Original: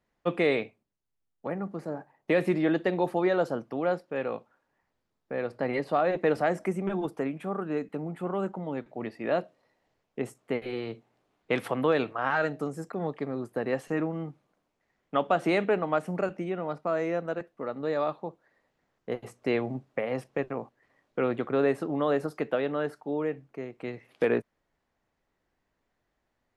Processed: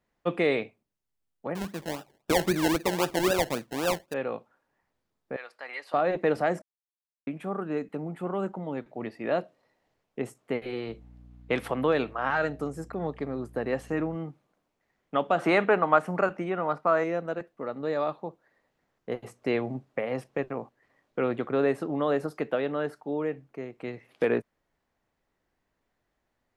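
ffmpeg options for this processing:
-filter_complex "[0:a]asettb=1/sr,asplit=3[a][b][c];[a]atrim=end=1.554[d];[b]atrim=start=1.55:end=4.14,asetpts=PTS-STARTPTS,afade=t=in:d=0.004:c=qsin,afade=t=out:st=2.586:d=0.004:c=qsin,acrusher=samples=29:mix=1:aa=0.000001:lfo=1:lforange=17.4:lforate=3.8[e];[c]atrim=start=4.136[f];[d][e]acrossfade=d=0.004:c1=hsin:c2=qsin[g];[g][f]acrossfade=d=0.004:c1=qsin:c2=hsin,asettb=1/sr,asplit=3[h][i][j];[h]atrim=end=5.364[k];[i]atrim=start=5.36:end=5.94,asetpts=PTS-STARTPTS,afade=t=in:d=0.004:c=qsin,afade=t=out:st=0.576:d=0.004:c=qsin,highpass=1.3k[l];[j]atrim=start=5.936[m];[k][l]acrossfade=d=0.004:c1=hsin:c2=qsin[n];[n][m]acrossfade=d=0.004:c1=qsin:c2=hsin,asettb=1/sr,asplit=3[o][p][q];[o]atrim=end=10.884[r];[p]atrim=start=10.88:end=14.16,asetpts=PTS-STARTPTS,afade=t=in:d=0.004:c=qsin,afade=t=out:st=3.276:d=0.004:c=qsin,aeval=exprs='val(0)+0.00355*(sin(2*PI*60*n/s)+sin(2*PI*2*60*n/s)/2+sin(2*PI*3*60*n/s)/3+sin(2*PI*4*60*n/s)/4+sin(2*PI*5*60*n/s)/5)':c=same[s];[q]atrim=start=14.156[t];[r][s]acrossfade=d=0.004:c1=hsin:c2=qsin[u];[u][t]acrossfade=d=0.004:c1=qsin:c2=hsin,asettb=1/sr,asplit=3[v][w][x];[v]atrim=end=15.384[y];[w]atrim=start=15.38:end=17.04,asetpts=PTS-STARTPTS,afade=t=in:d=0.004:c=qsin,afade=t=out:st=1.656:d=0.004:c=qsin,equalizer=f=1.2k:w=0.86:g=9.5[z];[x]atrim=start=17.036[aa];[y][z]acrossfade=d=0.004:c1=hsin:c2=qsin[ab];[ab][aa]acrossfade=d=0.004:c1=qsin:c2=hsin,asplit=3[ac][ad][ae];[ac]atrim=end=6.62,asetpts=PTS-STARTPTS,afade=t=out:st=6.616:d=0.004:c=hsin[af];[ad]atrim=start=6.62:end=7.27,asetpts=PTS-STARTPTS,volume=0[ag];[ae]atrim=start=7.27,asetpts=PTS-STARTPTS,afade=t=in:d=0.004:c=hsin[ah];[af][ag][ah]concat=n=3:v=0:a=1"

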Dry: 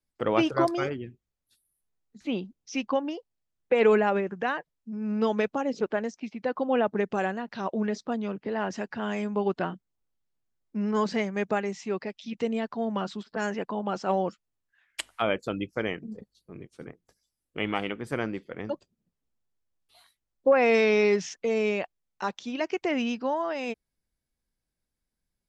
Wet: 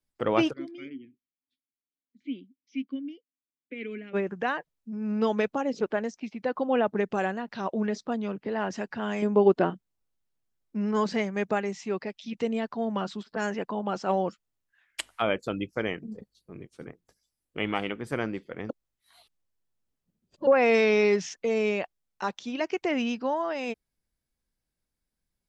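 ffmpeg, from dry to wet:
-filter_complex "[0:a]asplit=3[a][b][c];[a]afade=t=out:st=0.52:d=0.02[d];[b]asplit=3[e][f][g];[e]bandpass=f=270:t=q:w=8,volume=0dB[h];[f]bandpass=f=2.29k:t=q:w=8,volume=-6dB[i];[g]bandpass=f=3.01k:t=q:w=8,volume=-9dB[j];[h][i][j]amix=inputs=3:normalize=0,afade=t=in:st=0.52:d=0.02,afade=t=out:st=4.13:d=0.02[k];[c]afade=t=in:st=4.13:d=0.02[l];[d][k][l]amix=inputs=3:normalize=0,asettb=1/sr,asplit=3[m][n][o];[m]atrim=end=9.224[p];[n]atrim=start=9.22:end=9.7,asetpts=PTS-STARTPTS,afade=t=in:d=0.004:c=qsin,afade=t=out:st=0.476:d=0.004:c=qsin,equalizer=f=390:t=o:w=1.9:g=8.5[q];[o]atrim=start=9.696[r];[p][q]acrossfade=d=0.004:c1=hsin:c2=qsin[s];[s][r]acrossfade=d=0.004:c1=qsin:c2=hsin,asplit=3[t][u][v];[t]atrim=end=18.702[w];[u]atrim=start=18.698:end=20.472,asetpts=PTS-STARTPTS,areverse[x];[v]atrim=start=20.468[y];[w][x]acrossfade=d=0.004:c1=hsin:c2=hsin[z];[z][y]acrossfade=d=0.004:c1=hsin:c2=hsin"

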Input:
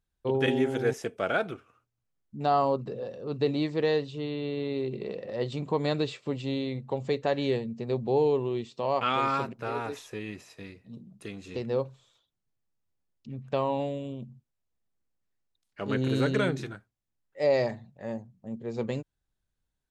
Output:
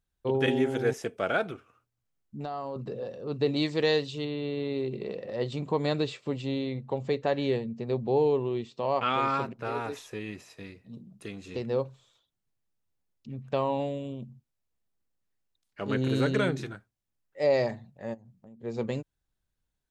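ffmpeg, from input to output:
-filter_complex "[0:a]asettb=1/sr,asplit=3[a][b][c];[a]atrim=end=1.514[d];[b]atrim=start=1.51:end=2.76,asetpts=PTS-STARTPTS,afade=t=in:d=0.004:c=qsin,afade=t=out:st=1.246:d=0.004:c=qsin,acompressor=threshold=-32dB:ratio=6:attack=3.2:release=140:knee=1:detection=peak[e];[c]atrim=start=2.756[f];[d][e]acrossfade=d=0.004:c1=hsin:c2=qsin[g];[g][f]acrossfade=d=0.004:c1=qsin:c2=hsin,asettb=1/sr,asplit=3[h][i][j];[h]atrim=end=3.564[k];[i]atrim=start=3.56:end=4.25,asetpts=PTS-STARTPTS,afade=t=in:d=0.004:c=qsin,afade=t=out:st=0.686:d=0.004:c=qsin,highshelf=f=2.6k:g=10.5[l];[j]atrim=start=4.246[m];[k][l]acrossfade=d=0.004:c1=hsin:c2=qsin[n];[n][m]acrossfade=d=0.004:c1=qsin:c2=hsin,asettb=1/sr,asplit=3[o][p][q];[o]atrim=end=6.474[r];[p]atrim=start=6.47:end=9.65,asetpts=PTS-STARTPTS,afade=t=in:d=0.004:c=qsin,afade=t=out:st=3.176:d=0.004:c=qsin,highshelf=f=6.4k:g=-7[s];[q]atrim=start=9.646[t];[r][s]acrossfade=d=0.004:c1=hsin:c2=qsin[u];[u][t]acrossfade=d=0.004:c1=qsin:c2=hsin,asplit=3[v][w][x];[v]afade=t=out:st=18.13:d=0.02[y];[w]acompressor=threshold=-47dB:ratio=12:attack=3.2:release=140:knee=1:detection=peak,afade=t=in:st=18.13:d=0.02,afade=t=out:st=18.62:d=0.02[z];[x]afade=t=in:st=18.62:d=0.02[aa];[y][z][aa]amix=inputs=3:normalize=0"

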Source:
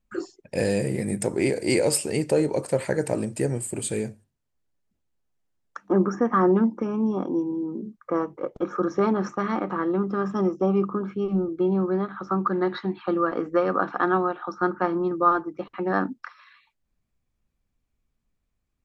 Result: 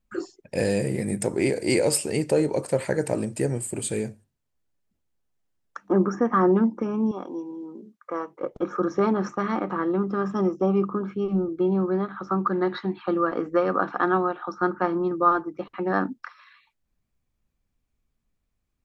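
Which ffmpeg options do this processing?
-filter_complex "[0:a]asettb=1/sr,asplit=3[a][b][c];[a]atrim=end=7.114[d];[b]atrim=start=7.11:end=8.41,asetpts=PTS-STARTPTS,afade=t=in:d=0.004:c=qsin,afade=t=out:st=1.296:d=0.004:c=qsin,highpass=f=760:p=1[e];[c]atrim=start=8.406[f];[d][e]acrossfade=d=0.004:c1=hsin:c2=qsin[g];[g][f]acrossfade=d=0.004:c1=qsin:c2=hsin"

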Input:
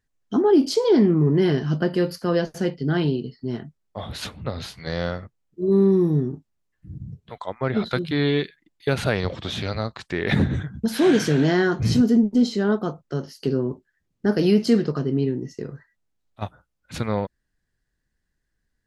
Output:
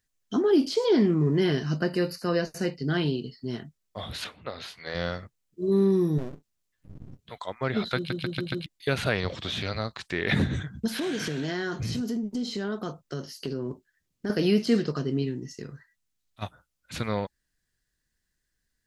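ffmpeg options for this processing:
-filter_complex "[0:a]asettb=1/sr,asplit=3[a][b][c];[a]atrim=end=1.634[d];[b]atrim=start=1.63:end=2.89,asetpts=PTS-STARTPTS,afade=t=in:d=0.004:c=qsin,afade=t=out:st=1.256:d=0.004:c=qsin,asuperstop=centerf=3300:order=4:qfactor=4.5[e];[c]atrim=start=2.886[f];[d][e]acrossfade=d=0.004:c1=hsin:c2=qsin[g];[g][f]acrossfade=d=0.004:c1=qsin:c2=hsin,asettb=1/sr,asplit=3[h][i][j];[h]atrim=end=4.244[k];[i]atrim=start=4.24:end=4.95,asetpts=PTS-STARTPTS,afade=t=in:d=0.004:c=qsin,afade=t=out:st=0.706:d=0.004:c=qsin,bass=f=250:g=-13,treble=f=4k:g=-11[l];[j]atrim=start=4.946[m];[k][l]acrossfade=d=0.004:c1=hsin:c2=qsin[n];[n][m]acrossfade=d=0.004:c1=qsin:c2=hsin,asettb=1/sr,asplit=3[o][p][q];[o]atrim=end=6.184[r];[p]atrim=start=6.18:end=7.19,asetpts=PTS-STARTPTS,afade=t=in:d=0.004:c=qsin,afade=t=out:st=1.006:d=0.004:c=qsin,aeval=exprs='max(val(0),0)':c=same[s];[q]atrim=start=7.186[t];[r][s]acrossfade=d=0.004:c1=hsin:c2=qsin[u];[u][t]acrossfade=d=0.004:c1=qsin:c2=hsin,asettb=1/sr,asplit=3[v][w][x];[v]atrim=end=10.874[y];[w]atrim=start=10.87:end=14.3,asetpts=PTS-STARTPTS,afade=t=in:d=0.004:c=qsin,afade=t=out:st=3.426:d=0.004:c=qsin,acompressor=threshold=-22dB:ratio=6:attack=3.2:release=140:knee=1:detection=peak[z];[x]atrim=start=14.296[aa];[y][z]acrossfade=d=0.004:c1=hsin:c2=qsin[ab];[ab][aa]acrossfade=d=0.004:c1=qsin:c2=hsin,asettb=1/sr,asplit=3[ac][ad][ae];[ac]atrim=end=15.224[af];[ad]atrim=start=15.22:end=16.43,asetpts=PTS-STARTPTS,afade=t=in:d=0.004:c=qsin,afade=t=out:st=1.206:d=0.004:c=qsin,equalizer=f=520:t=o:w=1.4:g=-5.5[ag];[ae]atrim=start=16.426[ah];[af][ag]acrossfade=d=0.004:c1=hsin:c2=qsin[ai];[ai][ah]acrossfade=d=0.004:c1=qsin:c2=hsin,asplit=6[aj][ak][al][am][an][ao];[aj]atrim=end=8.102[ap];[ak]atrim=start=7.958:end=8.102[aq];[al]atrim=start=7.958:end=8.102[ar];[am]atrim=start=7.958:end=8.102[as];[an]atrim=start=7.958:end=8.102[at];[ao]atrim=start=8.658[au];[ap][aq]acrossfade=d=0.004:c1=hsin:c2=hsin[av];[av][ar]acrossfade=d=0.004:c1=hsin:c2=hsin[aw];[aw][as]acrossfade=d=0.004:c1=hsin:c2=hsin[ax];[ax][at]acrossfade=d=0.004:c1=hsin:c2=hsin[ay];[ay][au]acrossfade=d=0.004:c1=hsin:c2=hsin,acrossover=split=3400[az][ba];[ba]acompressor=threshold=-44dB:ratio=4:attack=1:release=60[bb];[az][bb]amix=inputs=2:normalize=0,highshelf=f=2.3k:g=11.5,bandreject=f=840:w=21,volume=-5dB"

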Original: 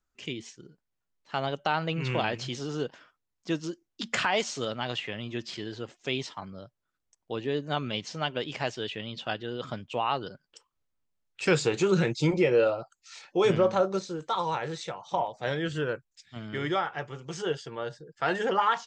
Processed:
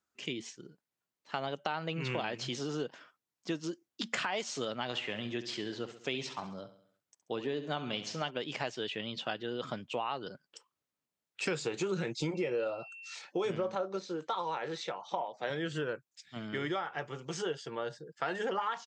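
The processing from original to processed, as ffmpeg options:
-filter_complex "[0:a]asplit=3[a][b][c];[a]afade=t=out:st=4.92:d=0.02[d];[b]aecho=1:1:67|134|201|268|335:0.224|0.114|0.0582|0.0297|0.0151,afade=t=in:st=4.92:d=0.02,afade=t=out:st=8.29:d=0.02[e];[c]afade=t=in:st=8.29:d=0.02[f];[d][e][f]amix=inputs=3:normalize=0,asettb=1/sr,asplit=3[g][h][i];[g]atrim=end=12.354[j];[h]atrim=start=12.35:end=13.15,asetpts=PTS-STARTPTS,afade=t=in:d=0.004:c=qsin,afade=t=out:st=0.796:d=0.004:c=qsin,aeval=exprs='val(0)+0.00501*sin(2*PI*2700*n/s)':c=same[k];[i]atrim=start=13.146[l];[j][k]acrossfade=d=0.004:c1=hsin:c2=qsin[m];[m][l]acrossfade=d=0.004:c1=qsin:c2=hsin,asettb=1/sr,asplit=3[n][o][p];[n]atrim=end=13.754[q];[o]atrim=start=13.75:end=15.5,asetpts=PTS-STARTPTS,afade=t=in:d=0.004:c=qsin,afade=t=out:st=1.746:d=0.004:c=qsin,highpass=200,lowpass=5.3k[r];[p]atrim=start=15.496[s];[q][r]acrossfade=d=0.004:c1=hsin:c2=qsin[t];[t][s]acrossfade=d=0.004:c1=qsin:c2=hsin,highpass=150,acompressor=threshold=-32dB:ratio=4"

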